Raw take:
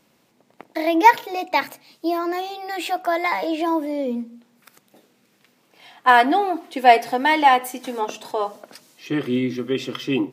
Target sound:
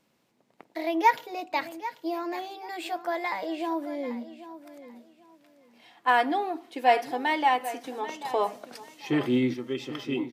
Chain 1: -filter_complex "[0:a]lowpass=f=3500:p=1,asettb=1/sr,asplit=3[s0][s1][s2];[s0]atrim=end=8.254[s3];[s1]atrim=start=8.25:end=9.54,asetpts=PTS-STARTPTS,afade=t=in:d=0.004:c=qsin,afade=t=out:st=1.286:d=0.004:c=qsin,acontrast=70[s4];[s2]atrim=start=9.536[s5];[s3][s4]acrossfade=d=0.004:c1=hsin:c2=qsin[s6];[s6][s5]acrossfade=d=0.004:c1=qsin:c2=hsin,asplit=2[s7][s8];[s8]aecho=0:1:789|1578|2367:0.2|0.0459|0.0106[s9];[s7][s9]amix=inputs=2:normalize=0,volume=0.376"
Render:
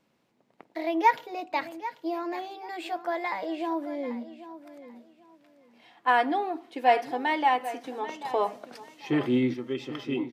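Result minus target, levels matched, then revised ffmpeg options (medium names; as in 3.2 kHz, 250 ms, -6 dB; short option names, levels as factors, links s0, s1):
8 kHz band -5.0 dB
-filter_complex "[0:a]lowpass=f=11000:p=1,asettb=1/sr,asplit=3[s0][s1][s2];[s0]atrim=end=8.254[s3];[s1]atrim=start=8.25:end=9.54,asetpts=PTS-STARTPTS,afade=t=in:d=0.004:c=qsin,afade=t=out:st=1.286:d=0.004:c=qsin,acontrast=70[s4];[s2]atrim=start=9.536[s5];[s3][s4]acrossfade=d=0.004:c1=hsin:c2=qsin[s6];[s6][s5]acrossfade=d=0.004:c1=qsin:c2=hsin,asplit=2[s7][s8];[s8]aecho=0:1:789|1578|2367:0.2|0.0459|0.0106[s9];[s7][s9]amix=inputs=2:normalize=0,volume=0.376"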